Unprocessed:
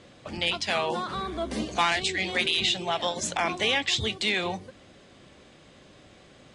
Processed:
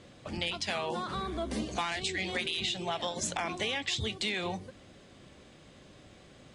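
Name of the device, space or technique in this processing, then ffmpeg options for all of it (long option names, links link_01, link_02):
ASMR close-microphone chain: -af "lowshelf=frequency=250:gain=4.5,acompressor=threshold=-26dB:ratio=5,highshelf=frequency=9300:gain=5.5,volume=-3.5dB"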